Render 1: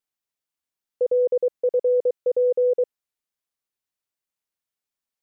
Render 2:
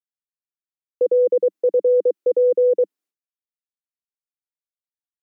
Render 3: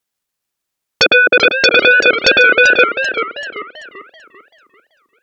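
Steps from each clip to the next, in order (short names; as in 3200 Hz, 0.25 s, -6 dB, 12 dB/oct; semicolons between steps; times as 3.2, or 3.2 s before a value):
steep high-pass 190 Hz 72 dB/oct; expander -52 dBFS; bell 310 Hz +13 dB 0.82 oct
transient shaper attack +10 dB, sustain -9 dB; sine folder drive 18 dB, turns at -1 dBFS; warbling echo 0.389 s, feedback 39%, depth 140 cents, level -8.5 dB; gain -4 dB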